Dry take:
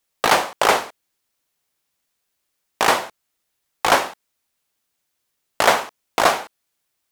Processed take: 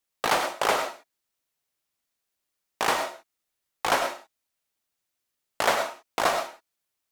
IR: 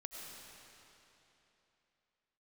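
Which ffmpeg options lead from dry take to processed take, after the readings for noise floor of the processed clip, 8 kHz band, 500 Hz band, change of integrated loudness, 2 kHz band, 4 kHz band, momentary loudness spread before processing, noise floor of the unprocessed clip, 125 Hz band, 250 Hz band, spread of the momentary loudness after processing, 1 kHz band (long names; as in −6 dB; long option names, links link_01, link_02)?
−83 dBFS, −7.0 dB, −6.5 dB, −7.5 dB, −7.0 dB, −7.0 dB, 10 LU, −76 dBFS, −7.5 dB, −7.5 dB, 10 LU, −7.0 dB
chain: -filter_complex "[1:a]atrim=start_sample=2205,afade=type=out:start_time=0.18:duration=0.01,atrim=end_sample=8379[link_01];[0:a][link_01]afir=irnorm=-1:irlink=0,volume=-2dB"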